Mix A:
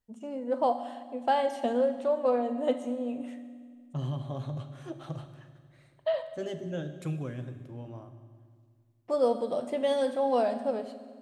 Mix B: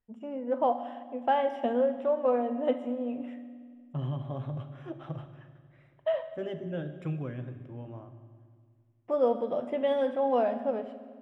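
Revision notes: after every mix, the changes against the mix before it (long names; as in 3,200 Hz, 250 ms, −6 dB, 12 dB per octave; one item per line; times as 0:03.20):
master: add Savitzky-Golay smoothing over 25 samples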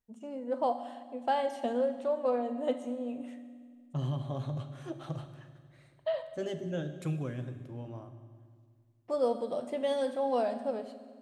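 first voice −3.5 dB
master: remove Savitzky-Golay smoothing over 25 samples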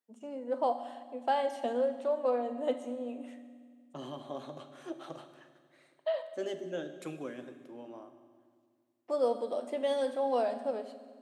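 master: add high-pass filter 250 Hz 24 dB per octave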